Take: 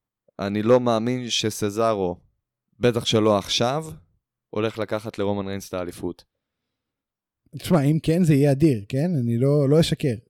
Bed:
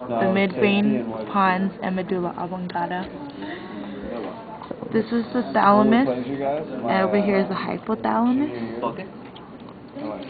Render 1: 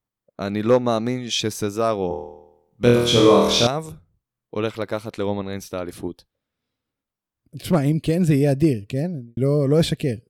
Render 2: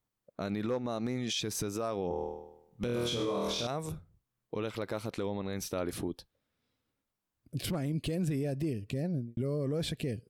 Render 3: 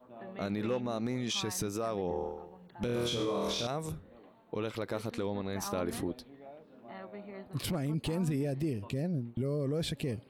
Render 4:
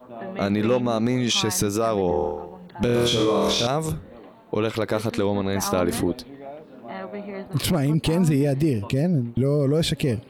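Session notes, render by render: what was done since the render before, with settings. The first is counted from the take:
0:02.08–0:03.67: flutter between parallel walls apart 4.3 metres, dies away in 0.82 s; 0:06.07–0:07.73: dynamic equaliser 950 Hz, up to −6 dB, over −47 dBFS, Q 0.71; 0:08.92–0:09.37: fade out and dull
downward compressor 6 to 1, threshold −26 dBFS, peak gain reduction 15.5 dB; brickwall limiter −24.5 dBFS, peak gain reduction 10 dB
mix in bed −26 dB
level +12 dB

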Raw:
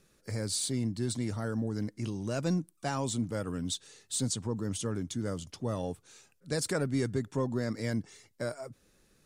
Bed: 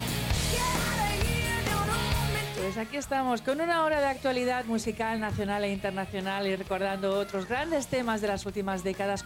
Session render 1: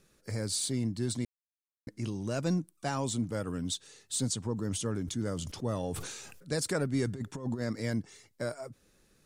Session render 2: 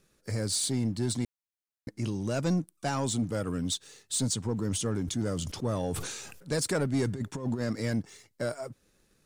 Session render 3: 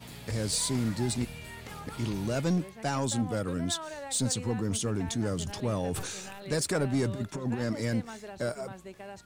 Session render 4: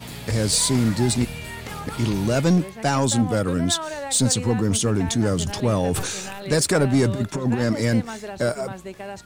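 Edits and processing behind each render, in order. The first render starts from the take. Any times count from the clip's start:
0:01.25–0:01.87: silence; 0:04.54–0:06.54: level that may fall only so fast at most 40 dB per second; 0:07.07–0:07.62: compressor whose output falls as the input rises −34 dBFS, ratio −0.5
leveller curve on the samples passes 1
mix in bed −14.5 dB
level +9.5 dB

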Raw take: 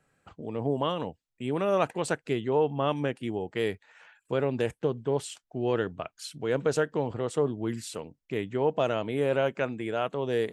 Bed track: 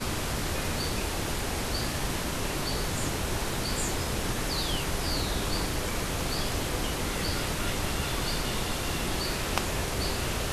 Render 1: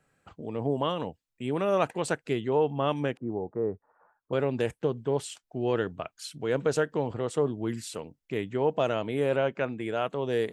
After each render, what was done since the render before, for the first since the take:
0:03.17–0:04.33: elliptic low-pass filter 1,200 Hz, stop band 80 dB
0:09.36–0:09.80: high-frequency loss of the air 97 metres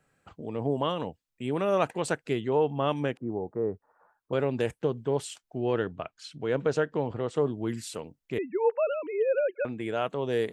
0:05.60–0:07.36: high-frequency loss of the air 92 metres
0:08.38–0:09.65: three sine waves on the formant tracks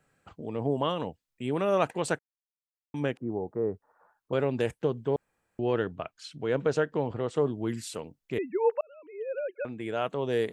0:02.19–0:02.94: silence
0:05.16–0:05.59: fill with room tone
0:08.81–0:10.12: fade in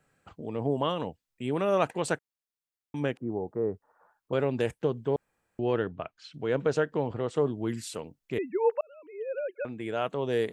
0:05.77–0:06.34: high-frequency loss of the air 120 metres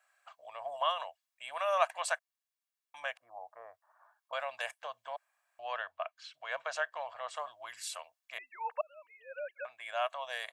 elliptic high-pass filter 660 Hz, stop band 40 dB
comb filter 1.8 ms, depth 38%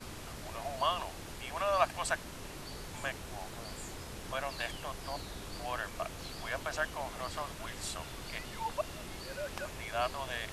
mix in bed track −14.5 dB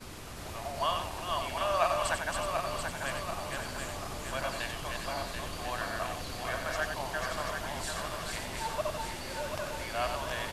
feedback delay that plays each chunk backwards 368 ms, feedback 72%, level −3 dB
single-tap delay 92 ms −6.5 dB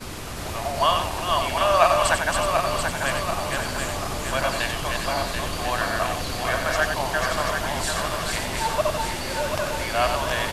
level +10.5 dB

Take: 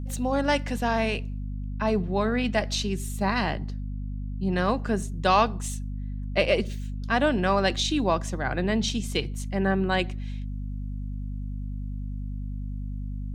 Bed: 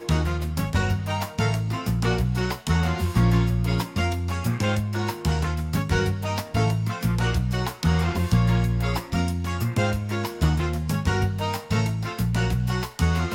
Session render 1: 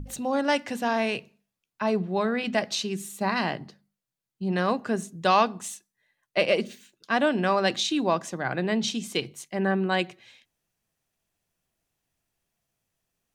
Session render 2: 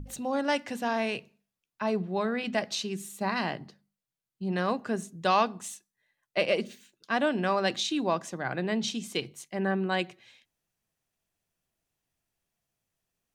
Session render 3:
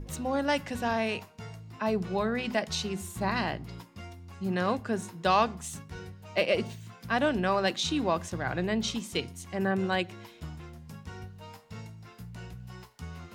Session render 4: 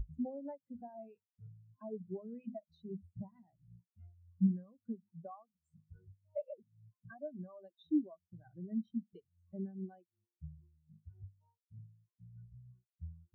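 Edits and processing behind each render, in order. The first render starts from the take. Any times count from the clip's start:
mains-hum notches 50/100/150/200/250 Hz
level −3.5 dB
mix in bed −20 dB
downward compressor 20 to 1, threshold −35 dBFS, peak gain reduction 17.5 dB; every bin expanded away from the loudest bin 4 to 1

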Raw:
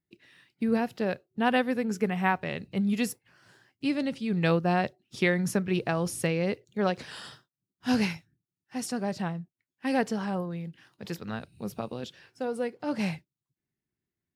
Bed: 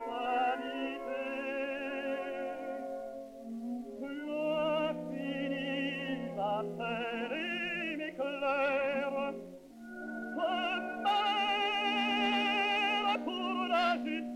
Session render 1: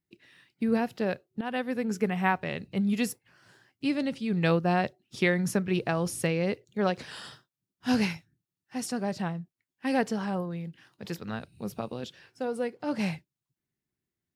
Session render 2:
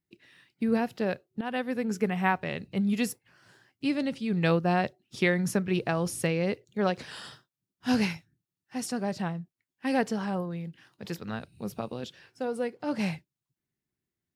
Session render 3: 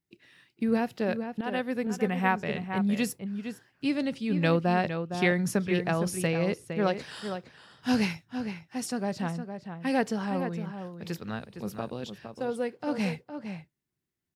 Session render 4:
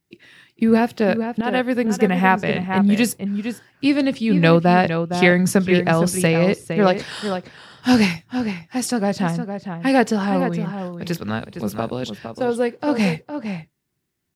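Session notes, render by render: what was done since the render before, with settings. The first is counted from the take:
0:01.41–0:01.88: fade in, from −13.5 dB
no processing that can be heard
slap from a distant wall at 79 metres, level −8 dB
level +10.5 dB; brickwall limiter −2 dBFS, peak gain reduction 1.5 dB

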